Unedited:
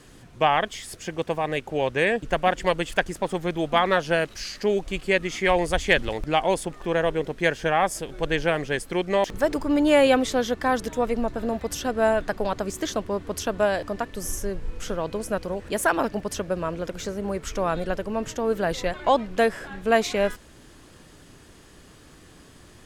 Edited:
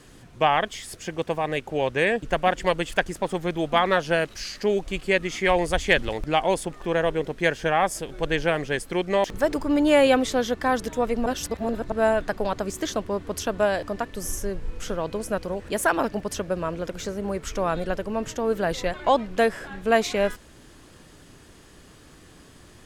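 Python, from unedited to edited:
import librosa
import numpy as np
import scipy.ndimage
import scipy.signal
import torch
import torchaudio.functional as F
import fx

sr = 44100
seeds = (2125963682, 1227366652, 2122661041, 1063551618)

y = fx.edit(x, sr, fx.reverse_span(start_s=11.26, length_s=0.66), tone=tone)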